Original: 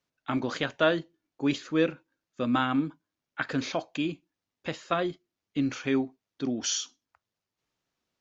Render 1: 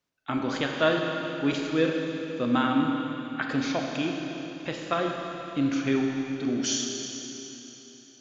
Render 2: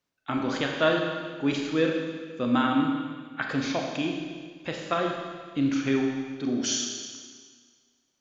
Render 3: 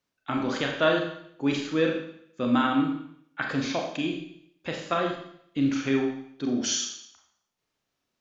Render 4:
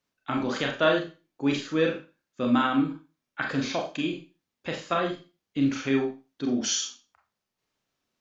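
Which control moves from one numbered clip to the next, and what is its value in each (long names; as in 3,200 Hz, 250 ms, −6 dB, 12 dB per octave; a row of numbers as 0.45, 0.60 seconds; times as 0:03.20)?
four-comb reverb, RT60: 3.6, 1.7, 0.69, 0.31 seconds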